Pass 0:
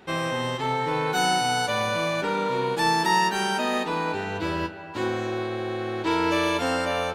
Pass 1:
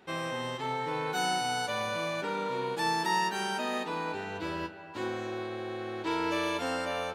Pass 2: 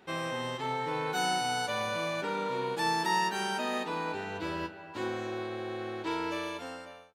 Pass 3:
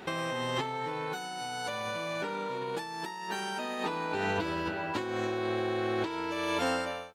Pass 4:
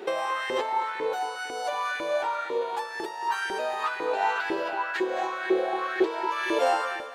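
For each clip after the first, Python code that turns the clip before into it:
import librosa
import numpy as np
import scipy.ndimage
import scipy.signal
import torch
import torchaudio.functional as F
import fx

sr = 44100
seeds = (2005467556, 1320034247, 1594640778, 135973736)

y1 = fx.low_shelf(x, sr, hz=93.0, db=-8.0)
y1 = y1 * 10.0 ** (-7.0 / 20.0)
y2 = fx.fade_out_tail(y1, sr, length_s=1.29)
y3 = fx.over_compress(y2, sr, threshold_db=-40.0, ratio=-1.0)
y3 = y3 * 10.0 ** (6.0 / 20.0)
y4 = fx.filter_lfo_highpass(y3, sr, shape='saw_up', hz=2.0, low_hz=350.0, high_hz=1900.0, q=5.0)
y4 = fx.echo_feedback(y4, sr, ms=227, feedback_pct=47, wet_db=-13.5)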